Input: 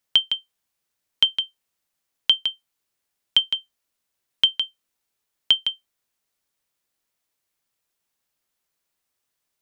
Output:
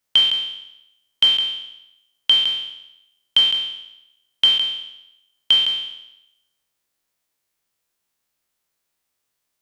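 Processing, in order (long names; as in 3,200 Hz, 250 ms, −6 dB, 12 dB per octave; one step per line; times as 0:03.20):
peak hold with a decay on every bin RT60 0.87 s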